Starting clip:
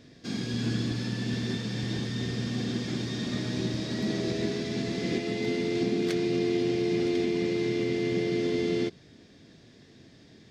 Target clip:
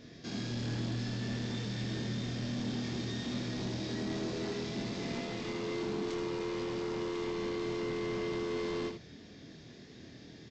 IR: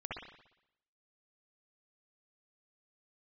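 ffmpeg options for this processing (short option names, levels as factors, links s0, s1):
-af "aresample=16000,asoftclip=type=tanh:threshold=0.0251,aresample=44100,alimiter=level_in=3.76:limit=0.0631:level=0:latency=1,volume=0.266,aecho=1:1:25|78:0.668|0.501"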